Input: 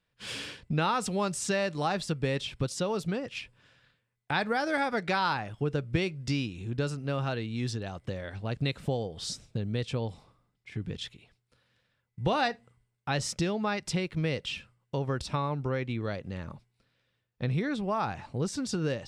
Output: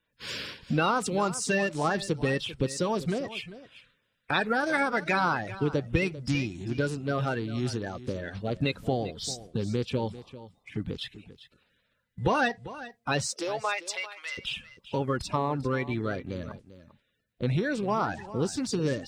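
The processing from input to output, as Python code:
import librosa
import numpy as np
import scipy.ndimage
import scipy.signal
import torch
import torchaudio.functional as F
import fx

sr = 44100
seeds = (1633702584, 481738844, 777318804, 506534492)

p1 = fx.spec_quant(x, sr, step_db=30)
p2 = fx.highpass(p1, sr, hz=fx.line((13.25, 310.0), (14.37, 1200.0)), slope=24, at=(13.25, 14.37), fade=0.02)
p3 = np.sign(p2) * np.maximum(np.abs(p2) - 10.0 ** (-46.5 / 20.0), 0.0)
p4 = p2 + (p3 * 10.0 ** (-11.5 / 20.0))
p5 = p4 + 10.0 ** (-15.5 / 20.0) * np.pad(p4, (int(395 * sr / 1000.0), 0))[:len(p4)]
y = p5 * 10.0 ** (1.0 / 20.0)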